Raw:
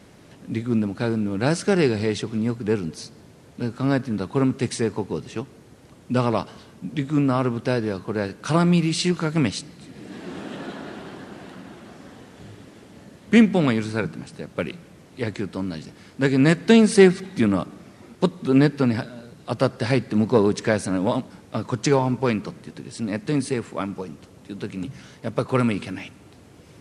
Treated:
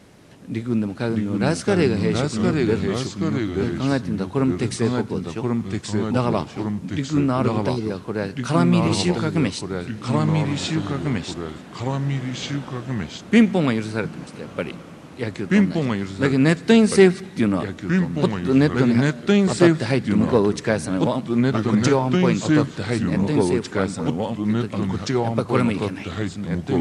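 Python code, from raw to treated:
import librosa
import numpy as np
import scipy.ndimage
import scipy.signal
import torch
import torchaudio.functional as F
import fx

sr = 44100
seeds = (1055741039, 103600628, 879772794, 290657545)

y = fx.spec_erase(x, sr, start_s=7.69, length_s=0.21, low_hz=470.0, high_hz=3500.0)
y = fx.echo_pitch(y, sr, ms=549, semitones=-2, count=2, db_per_echo=-3.0)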